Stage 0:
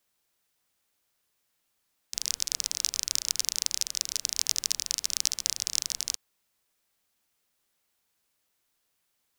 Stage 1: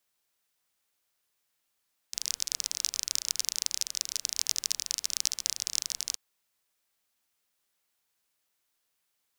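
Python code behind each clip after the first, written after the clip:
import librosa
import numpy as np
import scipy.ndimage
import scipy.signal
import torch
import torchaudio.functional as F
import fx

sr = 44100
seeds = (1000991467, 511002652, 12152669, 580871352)

y = fx.low_shelf(x, sr, hz=470.0, db=-5.0)
y = F.gain(torch.from_numpy(y), -2.0).numpy()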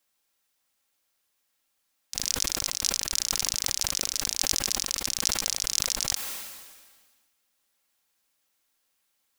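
y = fx.rider(x, sr, range_db=10, speed_s=0.5)
y = y + 0.34 * np.pad(y, (int(3.7 * sr / 1000.0), 0))[:len(y)]
y = fx.sustainer(y, sr, db_per_s=38.0)
y = F.gain(torch.from_numpy(y), 1.5).numpy()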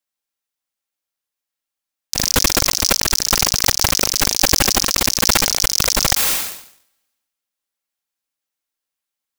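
y = fx.leveller(x, sr, passes=5)
y = y + 10.0 ** (-20.5 / 20.0) * np.pad(y, (int(213 * sr / 1000.0), 0))[:len(y)]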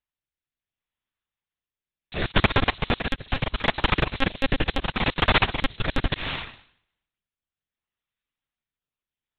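y = fx.rotary(x, sr, hz=0.7)
y = fx.lpc_monotone(y, sr, seeds[0], pitch_hz=270.0, order=8)
y = fx.transient(y, sr, attack_db=-2, sustain_db=-8)
y = F.gain(torch.from_numpy(y), 1.5).numpy()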